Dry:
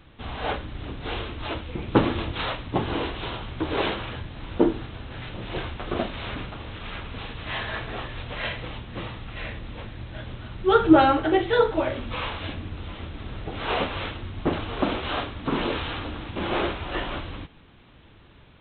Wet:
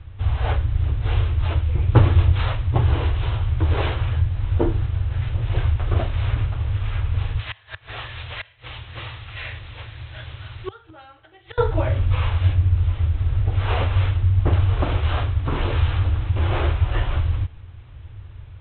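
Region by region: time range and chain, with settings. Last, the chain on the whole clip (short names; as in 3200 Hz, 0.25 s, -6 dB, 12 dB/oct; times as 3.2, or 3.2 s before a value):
7.39–11.58 tilt +4 dB/oct + flipped gate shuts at -18 dBFS, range -26 dB
whole clip: LPF 3400 Hz 12 dB/oct; resonant low shelf 140 Hz +12.5 dB, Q 3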